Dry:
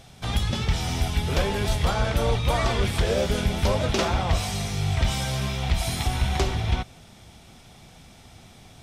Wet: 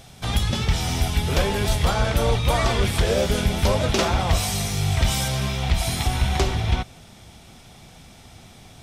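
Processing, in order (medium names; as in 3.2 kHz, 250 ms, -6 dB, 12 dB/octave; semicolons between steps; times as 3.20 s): treble shelf 8.3 kHz +5.5 dB, from 4.19 s +11 dB, from 5.28 s +2 dB; trim +2.5 dB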